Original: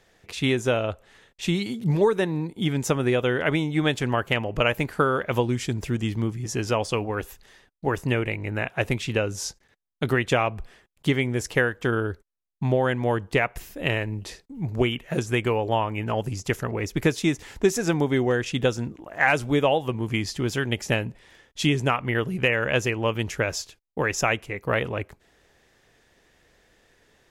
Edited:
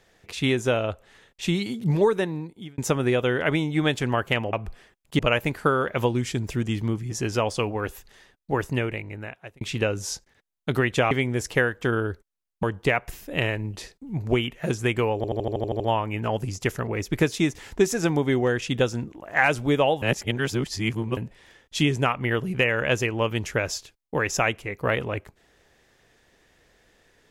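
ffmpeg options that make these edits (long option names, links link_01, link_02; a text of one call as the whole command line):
ffmpeg -i in.wav -filter_complex "[0:a]asplit=17[link_01][link_02][link_03][link_04][link_05][link_06][link_07][link_08][link_09][link_10][link_11][link_12][link_13][link_14][link_15][link_16][link_17];[link_01]atrim=end=2.78,asetpts=PTS-STARTPTS,afade=type=out:start_time=2.12:duration=0.66[link_18];[link_02]atrim=start=2.78:end=4.532,asetpts=PTS-STARTPTS,afade=type=in:duration=0.004:curve=hsin[link_19];[link_03]atrim=start=10.448:end=11.112[link_20];[link_04]atrim=start=4.528:end=8.95,asetpts=PTS-STARTPTS,afade=type=out:start_time=3.422:duration=1[link_21];[link_05]atrim=start=8.95:end=10.452,asetpts=PTS-STARTPTS,afade=type=in:duration=0.004:curve=hsin[link_22];[link_06]atrim=start=11.108:end=12.632[link_23];[link_07]atrim=start=13.108:end=15.722[link_24];[link_08]atrim=start=15.638:end=15.722[link_25];[link_09]atrim=start=15.638:end=15.722[link_26];[link_10]atrim=start=15.638:end=15.722[link_27];[link_11]atrim=start=15.638:end=15.722[link_28];[link_12]atrim=start=15.638:end=15.722[link_29];[link_13]atrim=start=15.638:end=15.722[link_30];[link_14]atrim=start=15.638:end=15.722[link_31];[link_15]atrim=start=15.638:end=19.862[link_32];[link_16]atrim=start=19.858:end=21.012,asetpts=PTS-STARTPTS,areverse[link_33];[link_17]atrim=start=21.008[link_34];[link_18][link_19]concat=n=2:v=0:a=1[link_35];[link_35][link_20]acrossfade=duration=0.004:curve1=hsin:curve2=hsin[link_36];[link_21][link_22]concat=n=2:v=0:a=1[link_37];[link_36][link_37]acrossfade=duration=0.004:curve1=hsin:curve2=hsin[link_38];[link_38][link_23]acrossfade=duration=0.004:curve1=hsin:curve2=hsin[link_39];[link_39][link_24]acrossfade=duration=0.004:curve1=hsin:curve2=hsin[link_40];[link_40][link_25]acrossfade=duration=0.004:curve1=hsin:curve2=hsin[link_41];[link_41][link_26]acrossfade=duration=0.004:curve1=hsin:curve2=hsin[link_42];[link_42][link_27]acrossfade=duration=0.004:curve1=hsin:curve2=hsin[link_43];[link_43][link_28]acrossfade=duration=0.004:curve1=hsin:curve2=hsin[link_44];[link_44][link_29]acrossfade=duration=0.004:curve1=hsin:curve2=hsin[link_45];[link_45][link_30]acrossfade=duration=0.004:curve1=hsin:curve2=hsin[link_46];[link_46][link_31]acrossfade=duration=0.004:curve1=hsin:curve2=hsin[link_47];[link_47][link_32]acrossfade=duration=0.004:curve1=hsin:curve2=hsin[link_48];[link_48][link_33]acrossfade=duration=0.004:curve1=hsin:curve2=hsin[link_49];[link_49][link_34]acrossfade=duration=0.004:curve1=hsin:curve2=hsin" out.wav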